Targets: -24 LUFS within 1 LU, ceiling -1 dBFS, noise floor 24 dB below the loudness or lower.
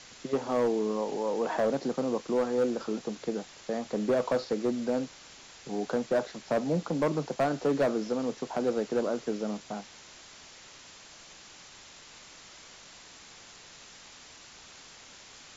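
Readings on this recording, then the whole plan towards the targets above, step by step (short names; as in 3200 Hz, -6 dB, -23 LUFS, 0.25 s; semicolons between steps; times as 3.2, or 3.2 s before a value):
clipped 0.8%; flat tops at -20.5 dBFS; noise floor -51 dBFS; noise floor target -55 dBFS; loudness -30.5 LUFS; peak -20.5 dBFS; loudness target -24.0 LUFS
-> clip repair -20.5 dBFS; denoiser 6 dB, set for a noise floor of -51 dBFS; gain +6.5 dB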